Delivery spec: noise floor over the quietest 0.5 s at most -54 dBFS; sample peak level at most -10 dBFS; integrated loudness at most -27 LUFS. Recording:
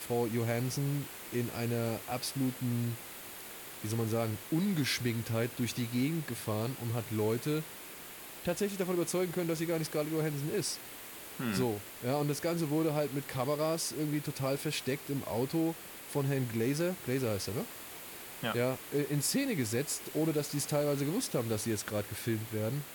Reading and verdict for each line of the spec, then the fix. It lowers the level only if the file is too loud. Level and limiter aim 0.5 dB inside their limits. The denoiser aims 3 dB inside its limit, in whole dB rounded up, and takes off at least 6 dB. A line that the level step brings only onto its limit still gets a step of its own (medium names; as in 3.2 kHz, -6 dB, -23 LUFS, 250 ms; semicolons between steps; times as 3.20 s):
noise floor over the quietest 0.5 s -47 dBFS: fail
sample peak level -19.5 dBFS: pass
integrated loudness -34.0 LUFS: pass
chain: noise reduction 10 dB, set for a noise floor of -47 dBFS